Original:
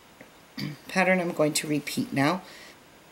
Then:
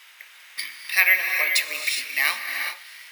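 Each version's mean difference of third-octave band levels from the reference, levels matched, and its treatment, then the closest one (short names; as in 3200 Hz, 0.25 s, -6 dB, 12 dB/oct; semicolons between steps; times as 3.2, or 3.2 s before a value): 13.5 dB: resonant high-pass 2000 Hz, resonance Q 1.6; high shelf 11000 Hz +4.5 dB; non-linear reverb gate 0.44 s rising, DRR 4 dB; careless resampling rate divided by 3×, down filtered, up hold; gain +5.5 dB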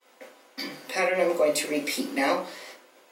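6.0 dB: expander -46 dBFS; HPF 330 Hz 24 dB/oct; limiter -18 dBFS, peak gain reduction 7 dB; shoebox room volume 140 m³, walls furnished, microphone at 2 m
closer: second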